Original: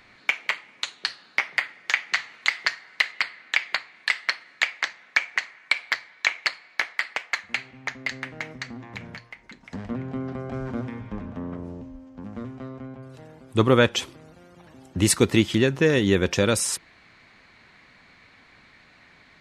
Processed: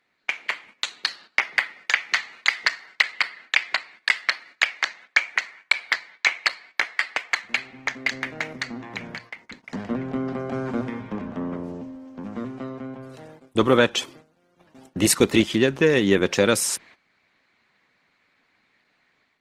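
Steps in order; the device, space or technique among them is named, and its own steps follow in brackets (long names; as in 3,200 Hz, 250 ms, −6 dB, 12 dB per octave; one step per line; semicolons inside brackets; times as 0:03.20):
video call (high-pass filter 170 Hz 12 dB per octave; automatic gain control gain up to 6 dB; noise gate −44 dBFS, range −15 dB; level −1 dB; Opus 16 kbit/s 48,000 Hz)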